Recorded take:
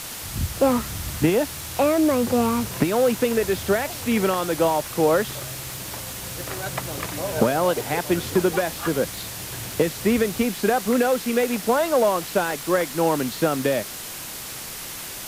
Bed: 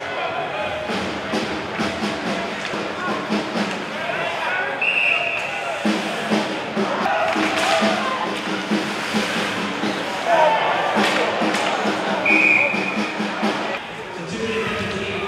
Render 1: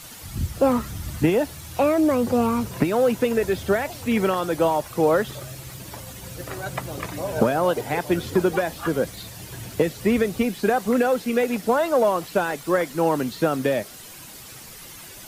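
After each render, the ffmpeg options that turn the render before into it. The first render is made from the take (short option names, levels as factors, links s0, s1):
-af "afftdn=nr=10:nf=-35"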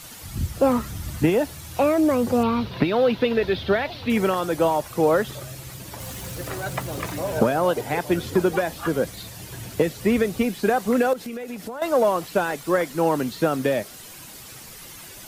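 -filter_complex "[0:a]asettb=1/sr,asplit=3[s0][s1][s2];[s0]atrim=end=2.434[s3];[s1]atrim=start=2.43:end=4.1,asetpts=PTS-STARTPTS,afade=t=in:d=0.004:c=qsin,afade=t=out:st=1.666:d=0.004:c=qsin,highshelf=f=5500:t=q:w=3:g=-13[s4];[s2]atrim=start=4.096[s5];[s3][s4]acrossfade=d=0.004:c1=hsin:c2=qsin[s6];[s6][s5]acrossfade=d=0.004:c1=qsin:c2=hsin,asettb=1/sr,asplit=3[s7][s8][s9];[s7]atrim=end=6.004[s10];[s8]atrim=start=6:end=7.39,asetpts=PTS-STARTPTS,afade=t=in:d=0.004:c=qsin,afade=t=out:st=1.386:d=0.004:c=qsin,aeval=exprs='val(0)+0.5*0.015*sgn(val(0))':c=same[s11];[s9]atrim=start=7.386[s12];[s10][s11]acrossfade=d=0.004:c1=hsin:c2=qsin[s13];[s13][s12]acrossfade=d=0.004:c1=qsin:c2=hsin,asettb=1/sr,asplit=3[s14][s15][s16];[s14]atrim=end=11.134[s17];[s15]atrim=start=11.13:end=11.82,asetpts=PTS-STARTPTS,afade=t=in:d=0.004:c=qsin,afade=t=out:st=0.686:d=0.004:c=qsin,acompressor=threshold=0.0355:ratio=10:attack=3.2:release=140:knee=1:detection=peak[s18];[s16]atrim=start=11.816[s19];[s17][s18]acrossfade=d=0.004:c1=hsin:c2=qsin[s20];[s20][s19]acrossfade=d=0.004:c1=qsin:c2=hsin"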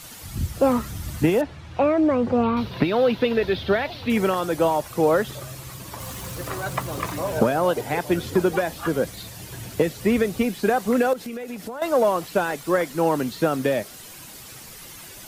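-filter_complex "[0:a]asettb=1/sr,asplit=3[s0][s1][s2];[s0]atrim=end=1.414[s3];[s1]atrim=start=1.41:end=2.57,asetpts=PTS-STARTPTS,afade=t=in:d=0.004:c=qsin,afade=t=out:st=1.156:d=0.004:c=qsin,lowpass=2800[s4];[s2]atrim=start=2.566[s5];[s3][s4]acrossfade=d=0.004:c1=hsin:c2=qsin[s6];[s6][s5]acrossfade=d=0.004:c1=qsin:c2=hsin,asettb=1/sr,asplit=3[s7][s8][s9];[s7]atrim=end=5.424[s10];[s8]atrim=start=5.42:end=7.29,asetpts=PTS-STARTPTS,afade=t=in:d=0.004:c=qsin,afade=t=out:st=1.866:d=0.004:c=qsin,equalizer=f=1100:t=o:w=0.34:g=7.5[s11];[s9]atrim=start=7.286[s12];[s10][s11]acrossfade=d=0.004:c1=hsin:c2=qsin[s13];[s13][s12]acrossfade=d=0.004:c1=qsin:c2=hsin"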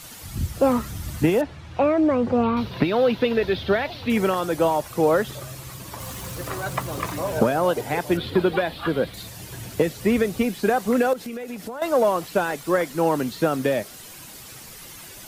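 -filter_complex "[0:a]asettb=1/sr,asplit=3[s0][s1][s2];[s0]atrim=end=8.174[s3];[s1]atrim=start=8.17:end=9.14,asetpts=PTS-STARTPTS,afade=t=in:d=0.004:c=qsin,afade=t=out:st=0.966:d=0.004:c=qsin,highshelf=f=4900:t=q:w=3:g=-8.5[s4];[s2]atrim=start=9.136[s5];[s3][s4]acrossfade=d=0.004:c1=hsin:c2=qsin[s6];[s6][s5]acrossfade=d=0.004:c1=qsin:c2=hsin"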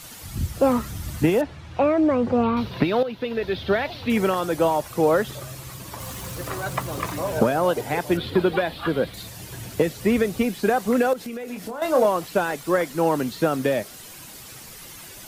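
-filter_complex "[0:a]asettb=1/sr,asplit=3[s0][s1][s2];[s0]atrim=end=11.444[s3];[s1]atrim=start=11.44:end=12.06,asetpts=PTS-STARTPTS,afade=t=in:d=0.004:c=qsin,afade=t=out:st=0.616:d=0.004:c=qsin,asplit=2[s4][s5];[s5]adelay=28,volume=0.447[s6];[s4][s6]amix=inputs=2:normalize=0,atrim=end_sample=27342[s7];[s2]atrim=start=12.056[s8];[s3][s7]acrossfade=d=0.004:c1=hsin:c2=qsin[s9];[s9][s8]acrossfade=d=0.004:c1=qsin:c2=hsin,asplit=2[s10][s11];[s10]atrim=end=3.03,asetpts=PTS-STARTPTS,afade=t=out:st=3.026:d=0.004:c=hsin:silence=0.237137[s12];[s11]atrim=start=3.03,asetpts=PTS-STARTPTS,afade=t=in:d=0.76:silence=0.237137[s13];[s12][s13]concat=n=2:v=0:a=1"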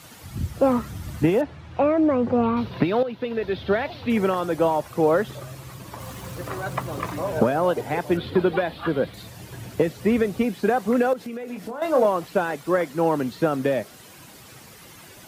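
-af "highpass=67,highshelf=f=3200:g=-8"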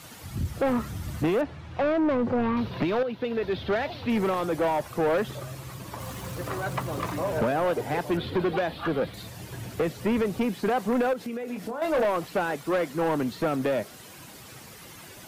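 -af "asoftclip=type=tanh:threshold=0.1"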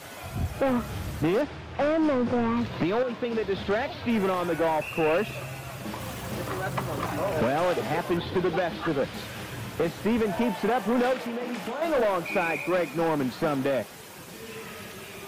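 -filter_complex "[1:a]volume=0.126[s0];[0:a][s0]amix=inputs=2:normalize=0"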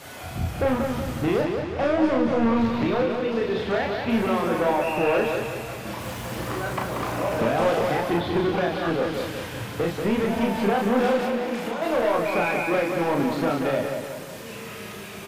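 -filter_complex "[0:a]asplit=2[s0][s1];[s1]adelay=35,volume=0.708[s2];[s0][s2]amix=inputs=2:normalize=0,asplit=2[s3][s4];[s4]adelay=185,lowpass=f=5000:p=1,volume=0.562,asplit=2[s5][s6];[s6]adelay=185,lowpass=f=5000:p=1,volume=0.5,asplit=2[s7][s8];[s8]adelay=185,lowpass=f=5000:p=1,volume=0.5,asplit=2[s9][s10];[s10]adelay=185,lowpass=f=5000:p=1,volume=0.5,asplit=2[s11][s12];[s12]adelay=185,lowpass=f=5000:p=1,volume=0.5,asplit=2[s13][s14];[s14]adelay=185,lowpass=f=5000:p=1,volume=0.5[s15];[s3][s5][s7][s9][s11][s13][s15]amix=inputs=7:normalize=0"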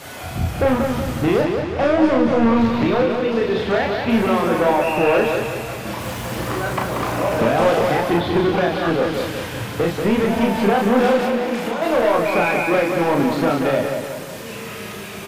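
-af "volume=1.88"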